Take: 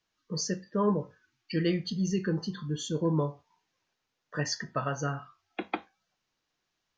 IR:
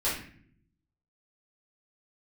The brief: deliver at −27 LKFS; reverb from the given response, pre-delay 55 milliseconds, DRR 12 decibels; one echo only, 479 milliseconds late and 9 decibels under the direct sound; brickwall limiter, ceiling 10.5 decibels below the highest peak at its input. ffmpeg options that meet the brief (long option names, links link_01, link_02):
-filter_complex "[0:a]alimiter=level_in=1.5dB:limit=-24dB:level=0:latency=1,volume=-1.5dB,aecho=1:1:479:0.355,asplit=2[link_01][link_02];[1:a]atrim=start_sample=2205,adelay=55[link_03];[link_02][link_03]afir=irnorm=-1:irlink=0,volume=-21dB[link_04];[link_01][link_04]amix=inputs=2:normalize=0,volume=9dB"